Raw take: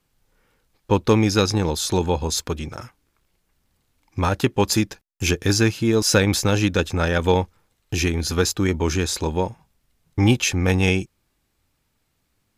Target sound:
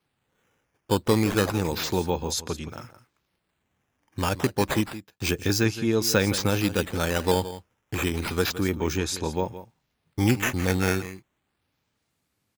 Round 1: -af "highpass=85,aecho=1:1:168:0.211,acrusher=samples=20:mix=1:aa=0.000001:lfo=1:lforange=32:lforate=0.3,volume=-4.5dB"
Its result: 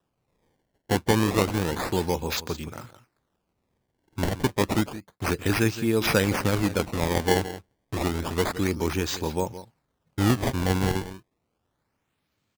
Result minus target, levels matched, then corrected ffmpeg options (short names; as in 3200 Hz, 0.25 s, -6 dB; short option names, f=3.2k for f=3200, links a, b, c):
decimation with a swept rate: distortion +6 dB
-af "highpass=85,aecho=1:1:168:0.211,acrusher=samples=6:mix=1:aa=0.000001:lfo=1:lforange=9.6:lforate=0.3,volume=-4.5dB"